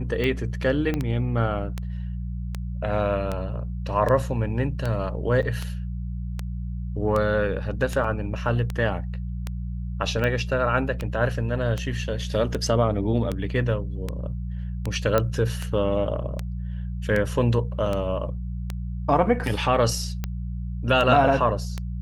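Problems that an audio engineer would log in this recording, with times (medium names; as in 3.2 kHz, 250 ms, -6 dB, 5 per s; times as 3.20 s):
hum 60 Hz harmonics 3 -30 dBFS
tick 78 rpm -14 dBFS
0.94 s: pop -14 dBFS
5.42–5.43 s: dropout 8.2 ms
8.04 s: dropout 3.5 ms
15.18 s: pop -8 dBFS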